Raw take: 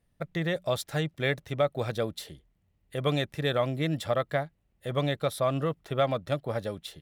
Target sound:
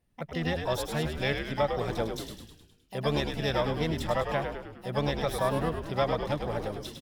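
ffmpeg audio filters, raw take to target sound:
-filter_complex "[0:a]asplit=2[a][b];[b]asetrate=66075,aresample=44100,atempo=0.66742,volume=-7dB[c];[a][c]amix=inputs=2:normalize=0,asplit=8[d][e][f][g][h][i][j][k];[e]adelay=103,afreqshift=-83,volume=-6dB[l];[f]adelay=206,afreqshift=-166,volume=-11dB[m];[g]adelay=309,afreqshift=-249,volume=-16.1dB[n];[h]adelay=412,afreqshift=-332,volume=-21.1dB[o];[i]adelay=515,afreqshift=-415,volume=-26.1dB[p];[j]adelay=618,afreqshift=-498,volume=-31.2dB[q];[k]adelay=721,afreqshift=-581,volume=-36.2dB[r];[d][l][m][n][o][p][q][r]amix=inputs=8:normalize=0,volume=-2.5dB"

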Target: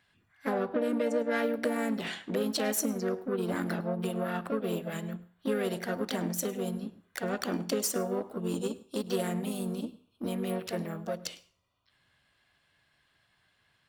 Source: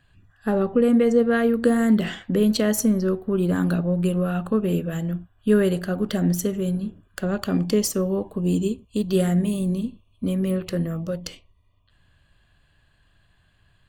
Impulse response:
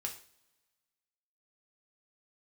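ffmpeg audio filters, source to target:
-filter_complex "[0:a]acompressor=threshold=-20dB:ratio=6,aeval=exprs='0.282*(cos(1*acos(clip(val(0)/0.282,-1,1)))-cos(1*PI/2))+0.00631*(cos(7*acos(clip(val(0)/0.282,-1,1)))-cos(7*PI/2))+0.01*(cos(8*acos(clip(val(0)/0.282,-1,1)))-cos(8*PI/2))':c=same,asplit=2[a][b];[b]asetrate=55563,aresample=44100,atempo=0.793701,volume=-5dB[c];[a][c]amix=inputs=2:normalize=0,highpass=f=440:p=1,asplit=2[d][e];[1:a]atrim=start_sample=2205,adelay=102[f];[e][f]afir=irnorm=-1:irlink=0,volume=-19.5dB[g];[d][g]amix=inputs=2:normalize=0,volume=-3dB"

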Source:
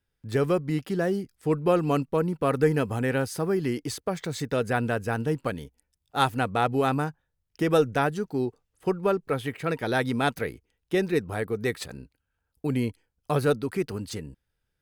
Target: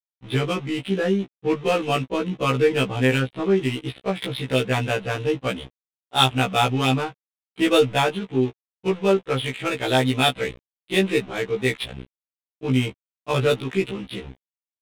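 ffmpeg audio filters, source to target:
-af "acontrast=74,aresample=8000,aeval=exprs='val(0)*gte(abs(val(0)),0.0178)':c=same,aresample=44100,aexciter=amount=4.3:drive=6.5:freq=2.4k,adynamicsmooth=sensitivity=2.5:basefreq=1.3k,afftfilt=real='re*1.73*eq(mod(b,3),0)':imag='im*1.73*eq(mod(b,3),0)':win_size=2048:overlap=0.75,volume=-1dB"

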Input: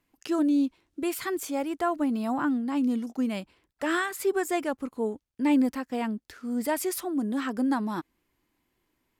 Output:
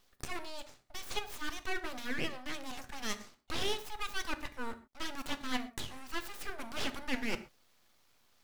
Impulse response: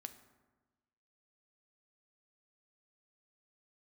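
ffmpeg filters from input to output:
-filter_complex "[0:a]highpass=280,aemphasis=mode=production:type=bsi,asplit=2[a][b];[b]alimiter=limit=-18dB:level=0:latency=1:release=110,volume=0dB[c];[a][c]amix=inputs=2:normalize=0,asoftclip=type=hard:threshold=-13dB,areverse,acompressor=threshold=-33dB:ratio=10,areverse,asetrate=48069,aresample=44100,acrossover=split=580 4900:gain=0.141 1 0.1[d][e][f];[d][e][f]amix=inputs=3:normalize=0,aeval=exprs='abs(val(0))':c=same[g];[1:a]atrim=start_sample=2205,atrim=end_sample=6174[h];[g][h]afir=irnorm=-1:irlink=0,volume=11.5dB"

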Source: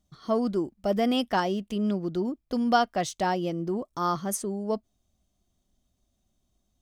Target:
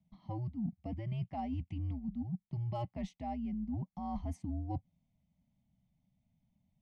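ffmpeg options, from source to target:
-filter_complex "[0:a]asplit=3[a][b][c];[a]bandpass=f=300:t=q:w=8,volume=0dB[d];[b]bandpass=f=870:t=q:w=8,volume=-6dB[e];[c]bandpass=f=2.24k:t=q:w=8,volume=-9dB[f];[d][e][f]amix=inputs=3:normalize=0,equalizer=f=350:w=1.4:g=9,areverse,acompressor=threshold=-45dB:ratio=6,areverse,afreqshift=-120,acrossover=split=1200[g][h];[g]asubboost=boost=2.5:cutoff=94[i];[h]aeval=exprs='clip(val(0),-1,0.00119)':c=same[j];[i][j]amix=inputs=2:normalize=0,volume=9dB"

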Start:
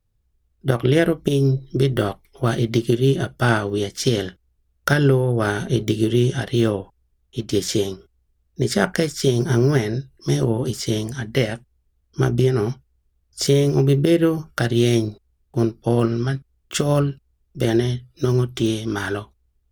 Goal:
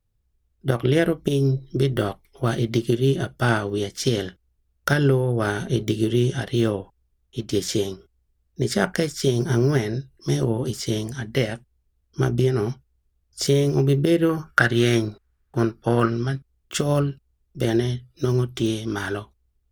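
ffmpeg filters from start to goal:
-filter_complex "[0:a]asettb=1/sr,asplit=3[a][b][c];[a]atrim=end=14.294[d];[b]atrim=start=14.29:end=16.1,asetpts=PTS-STARTPTS,afade=t=in:d=0.004:c=qsin,afade=t=out:st=1.806:d=0.004:c=qsin,equalizer=f=1.5k:t=o:w=1.1:g=13[e];[c]atrim=start=16.096[f];[d][e]acrossfade=d=0.004:c1=hsin:c2=qsin[g];[g][f]acrossfade=d=0.004:c1=qsin:c2=hsin,volume=-2.5dB"

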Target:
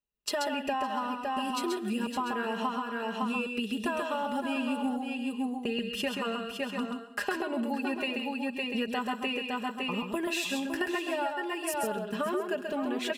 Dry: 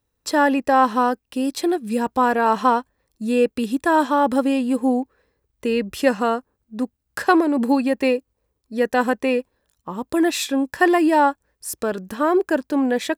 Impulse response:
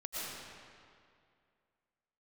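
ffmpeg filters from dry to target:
-filter_complex "[0:a]agate=range=-17dB:threshold=-32dB:ratio=16:detection=peak,equalizer=f=2.8k:w=4.8:g=13.5,aecho=1:1:4.9:0.92,aecho=1:1:559:0.335,asplit=2[a][b];[1:a]atrim=start_sample=2205,afade=t=out:st=0.25:d=0.01,atrim=end_sample=11466[c];[b][c]afir=irnorm=-1:irlink=0,volume=-14.5dB[d];[a][d]amix=inputs=2:normalize=0,acompressor=threshold=-23dB:ratio=12,asplit=2[e][f];[f]aecho=0:1:133:0.562[g];[e][g]amix=inputs=2:normalize=0,volume=-6dB"

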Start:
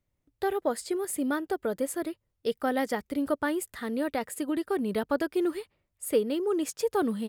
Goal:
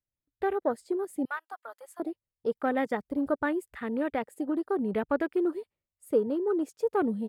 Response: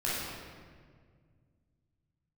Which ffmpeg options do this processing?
-filter_complex "[0:a]asettb=1/sr,asplit=3[a][b][c];[a]atrim=end=1.254[d];[b]atrim=start=1.25:end=2,asetpts=PTS-STARTPTS,afade=t=in:d=0.004:c=qsin,afade=t=out:st=0.746:d=0.004:c=qsin,highpass=f=870:w=0.5412,highpass=f=870:w=1.3066[e];[c]atrim=start=1.996[f];[d][e]acrossfade=d=0.004:c1=hsin:c2=qsin[g];[g][f]acrossfade=d=0.004:c1=qsin:c2=hsin,afwtdn=0.01"

